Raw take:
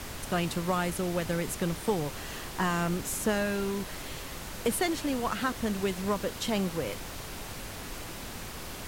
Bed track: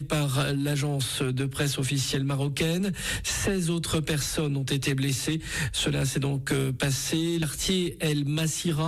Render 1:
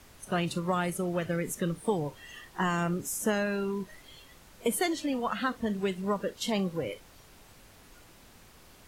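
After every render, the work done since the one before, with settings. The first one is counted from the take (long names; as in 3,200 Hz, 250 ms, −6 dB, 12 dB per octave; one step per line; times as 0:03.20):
noise reduction from a noise print 15 dB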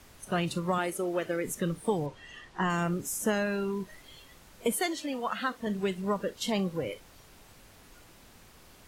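0:00.78–0:01.45: low shelf with overshoot 220 Hz −9.5 dB, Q 1.5
0:02.06–0:02.70: high-frequency loss of the air 69 metres
0:04.73–0:05.67: low-shelf EQ 220 Hz −11 dB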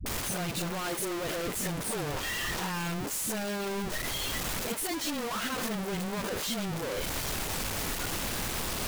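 sign of each sample alone
all-pass dispersion highs, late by 62 ms, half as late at 310 Hz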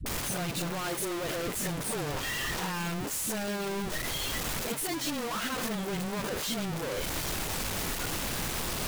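mix in bed track −22.5 dB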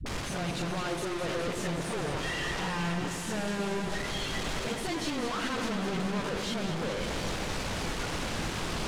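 high-frequency loss of the air 76 metres
delay that swaps between a low-pass and a high-pass 104 ms, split 1,100 Hz, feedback 88%, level −7 dB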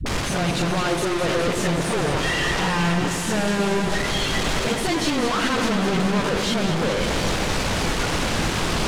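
level +10.5 dB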